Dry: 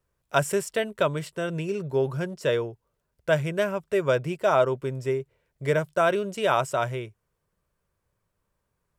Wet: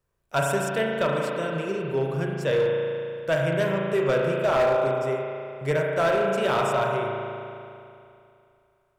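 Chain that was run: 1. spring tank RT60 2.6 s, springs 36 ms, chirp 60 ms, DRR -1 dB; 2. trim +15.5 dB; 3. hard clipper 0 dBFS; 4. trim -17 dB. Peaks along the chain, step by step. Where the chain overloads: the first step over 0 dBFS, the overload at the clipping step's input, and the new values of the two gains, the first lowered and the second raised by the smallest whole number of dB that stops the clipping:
-7.0 dBFS, +8.5 dBFS, 0.0 dBFS, -17.0 dBFS; step 2, 8.5 dB; step 2 +6.5 dB, step 4 -8 dB

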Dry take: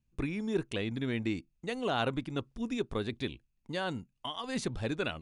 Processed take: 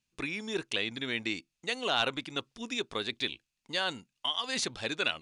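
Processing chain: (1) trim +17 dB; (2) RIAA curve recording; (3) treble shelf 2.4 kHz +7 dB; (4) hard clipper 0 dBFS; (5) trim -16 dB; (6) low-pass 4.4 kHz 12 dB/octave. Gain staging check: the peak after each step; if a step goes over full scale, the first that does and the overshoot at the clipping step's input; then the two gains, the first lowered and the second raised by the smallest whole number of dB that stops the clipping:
-1.0 dBFS, +2.5 dBFS, +7.5 dBFS, 0.0 dBFS, -16.0 dBFS, -15.5 dBFS; step 2, 7.5 dB; step 1 +9 dB, step 5 -8 dB

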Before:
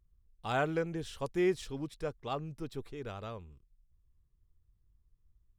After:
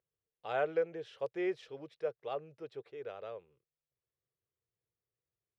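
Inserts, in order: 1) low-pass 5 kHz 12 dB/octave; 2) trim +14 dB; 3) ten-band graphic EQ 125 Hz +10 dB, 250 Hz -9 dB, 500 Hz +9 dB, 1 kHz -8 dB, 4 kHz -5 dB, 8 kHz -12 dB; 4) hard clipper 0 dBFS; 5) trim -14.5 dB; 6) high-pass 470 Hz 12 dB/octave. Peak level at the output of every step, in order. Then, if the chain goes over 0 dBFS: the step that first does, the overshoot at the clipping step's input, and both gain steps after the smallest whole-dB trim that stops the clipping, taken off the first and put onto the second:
-19.5 dBFS, -5.5 dBFS, -3.5 dBFS, -3.5 dBFS, -18.0 dBFS, -21.0 dBFS; nothing clips

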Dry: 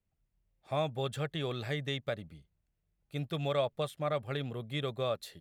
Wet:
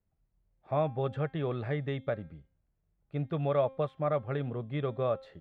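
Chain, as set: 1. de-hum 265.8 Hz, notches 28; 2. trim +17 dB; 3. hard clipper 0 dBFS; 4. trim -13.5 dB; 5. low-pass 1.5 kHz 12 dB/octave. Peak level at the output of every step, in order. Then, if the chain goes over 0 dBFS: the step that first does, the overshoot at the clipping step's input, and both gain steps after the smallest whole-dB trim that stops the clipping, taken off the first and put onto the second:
-19.5 dBFS, -2.5 dBFS, -2.5 dBFS, -16.0 dBFS, -16.0 dBFS; nothing clips

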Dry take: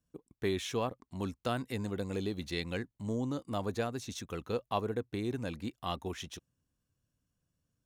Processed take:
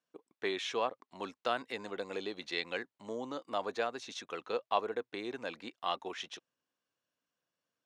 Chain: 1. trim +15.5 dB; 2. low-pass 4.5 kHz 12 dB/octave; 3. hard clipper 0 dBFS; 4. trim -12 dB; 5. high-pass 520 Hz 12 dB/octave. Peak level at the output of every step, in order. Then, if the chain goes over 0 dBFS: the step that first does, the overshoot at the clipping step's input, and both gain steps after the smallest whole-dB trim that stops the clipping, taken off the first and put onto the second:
-2.0 dBFS, -2.5 dBFS, -2.5 dBFS, -14.5 dBFS, -16.0 dBFS; nothing clips

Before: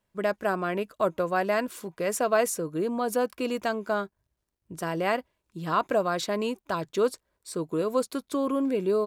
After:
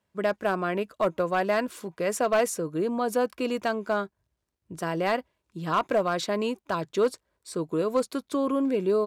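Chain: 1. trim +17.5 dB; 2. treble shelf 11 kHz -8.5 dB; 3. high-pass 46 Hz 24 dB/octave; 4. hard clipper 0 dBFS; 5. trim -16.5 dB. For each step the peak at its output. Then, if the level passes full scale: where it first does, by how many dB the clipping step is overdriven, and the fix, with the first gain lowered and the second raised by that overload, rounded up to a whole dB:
+6.5 dBFS, +6.5 dBFS, +7.0 dBFS, 0.0 dBFS, -16.5 dBFS; step 1, 7.0 dB; step 1 +10.5 dB, step 5 -9.5 dB

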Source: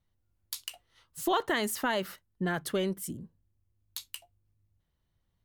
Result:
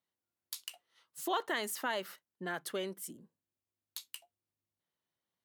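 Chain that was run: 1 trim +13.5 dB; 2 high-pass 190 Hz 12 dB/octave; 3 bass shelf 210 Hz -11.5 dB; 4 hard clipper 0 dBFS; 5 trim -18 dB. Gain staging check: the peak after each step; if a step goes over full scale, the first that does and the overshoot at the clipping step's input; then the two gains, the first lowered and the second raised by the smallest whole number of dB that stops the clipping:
-2.5 dBFS, -3.0 dBFS, -3.5 dBFS, -3.5 dBFS, -21.5 dBFS; nothing clips

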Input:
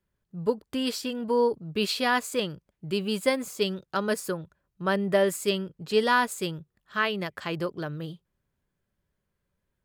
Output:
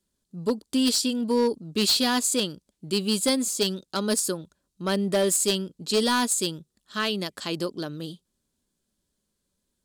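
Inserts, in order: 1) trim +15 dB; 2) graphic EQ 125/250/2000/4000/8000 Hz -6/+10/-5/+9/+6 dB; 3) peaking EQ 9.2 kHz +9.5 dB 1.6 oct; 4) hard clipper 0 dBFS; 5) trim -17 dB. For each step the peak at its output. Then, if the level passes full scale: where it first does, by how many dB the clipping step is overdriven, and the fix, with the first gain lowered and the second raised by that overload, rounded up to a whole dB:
+4.0 dBFS, +7.5 dBFS, +10.0 dBFS, 0.0 dBFS, -17.0 dBFS; step 1, 10.0 dB; step 1 +5 dB, step 5 -7 dB

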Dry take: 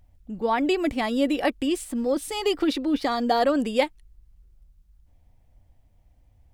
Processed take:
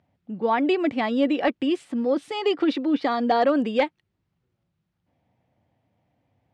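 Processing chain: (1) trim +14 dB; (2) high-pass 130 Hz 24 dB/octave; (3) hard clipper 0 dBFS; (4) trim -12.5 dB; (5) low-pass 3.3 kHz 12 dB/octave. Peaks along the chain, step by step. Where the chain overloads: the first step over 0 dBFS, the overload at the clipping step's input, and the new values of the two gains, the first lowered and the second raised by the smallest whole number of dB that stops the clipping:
+5.0 dBFS, +7.0 dBFS, 0.0 dBFS, -12.5 dBFS, -12.0 dBFS; step 1, 7.0 dB; step 1 +7 dB, step 4 -5.5 dB

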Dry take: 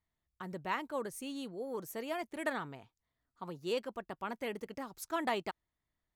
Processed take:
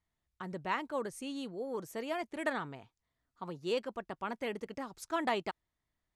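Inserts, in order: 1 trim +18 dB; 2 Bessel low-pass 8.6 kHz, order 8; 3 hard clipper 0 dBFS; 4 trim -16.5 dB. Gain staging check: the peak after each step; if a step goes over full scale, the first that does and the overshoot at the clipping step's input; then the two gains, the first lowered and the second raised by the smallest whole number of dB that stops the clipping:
-2.5 dBFS, -2.5 dBFS, -2.5 dBFS, -19.0 dBFS; nothing clips

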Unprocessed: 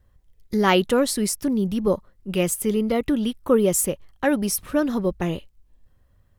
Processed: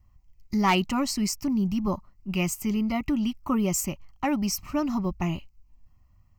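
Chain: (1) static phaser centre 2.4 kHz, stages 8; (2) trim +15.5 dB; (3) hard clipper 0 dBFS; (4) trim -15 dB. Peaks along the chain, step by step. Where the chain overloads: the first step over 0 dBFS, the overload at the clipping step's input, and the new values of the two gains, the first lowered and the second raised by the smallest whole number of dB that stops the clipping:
-8.0 dBFS, +7.5 dBFS, 0.0 dBFS, -15.0 dBFS; step 2, 7.5 dB; step 2 +7.5 dB, step 4 -7 dB

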